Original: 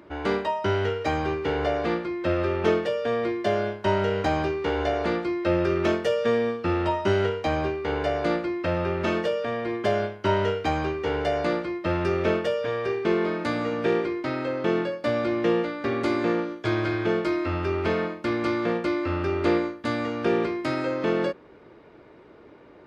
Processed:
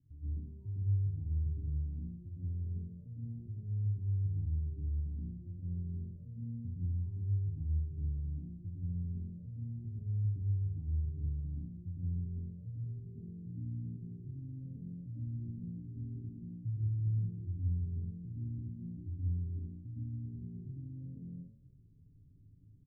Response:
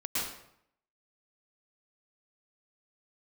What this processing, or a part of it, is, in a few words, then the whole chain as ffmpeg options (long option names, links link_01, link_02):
club heard from the street: -filter_complex "[0:a]aecho=1:1:7.4:0.71,asplit=2[link_01][link_02];[link_02]adelay=28,volume=-12.5dB[link_03];[link_01][link_03]amix=inputs=2:normalize=0,alimiter=limit=-18dB:level=0:latency=1:release=276,lowpass=frequency=120:width=0.5412,lowpass=frequency=120:width=1.3066[link_04];[1:a]atrim=start_sample=2205[link_05];[link_04][link_05]afir=irnorm=-1:irlink=0"